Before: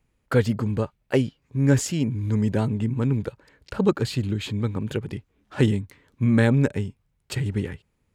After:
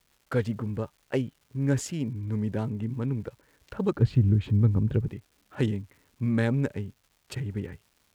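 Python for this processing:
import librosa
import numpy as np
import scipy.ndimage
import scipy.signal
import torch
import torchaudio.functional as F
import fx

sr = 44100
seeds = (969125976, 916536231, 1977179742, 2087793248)

y = fx.wiener(x, sr, points=9)
y = fx.riaa(y, sr, side='playback', at=(3.95, 5.08))
y = fx.dmg_crackle(y, sr, seeds[0], per_s=410.0, level_db=-45.0)
y = y * 10.0 ** (-6.5 / 20.0)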